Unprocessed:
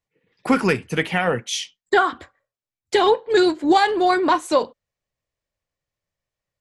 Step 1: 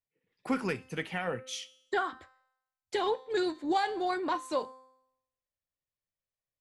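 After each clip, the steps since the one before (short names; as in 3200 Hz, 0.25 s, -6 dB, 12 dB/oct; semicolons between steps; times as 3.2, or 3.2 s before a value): resonator 260 Hz, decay 0.79 s, mix 60%; gain -6 dB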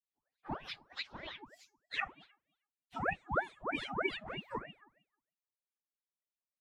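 inharmonic rescaling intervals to 125%; wah 3.2 Hz 380–3200 Hz, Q 5; ring modulator with a swept carrier 770 Hz, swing 75%, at 3.2 Hz; gain +8.5 dB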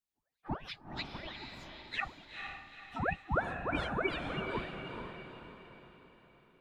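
low shelf 220 Hz +8.5 dB; on a send: diffused feedback echo 0.457 s, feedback 46%, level -5 dB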